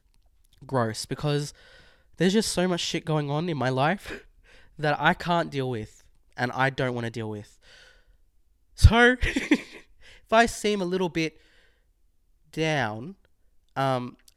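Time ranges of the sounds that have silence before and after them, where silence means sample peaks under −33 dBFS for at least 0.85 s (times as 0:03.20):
0:08.79–0:11.28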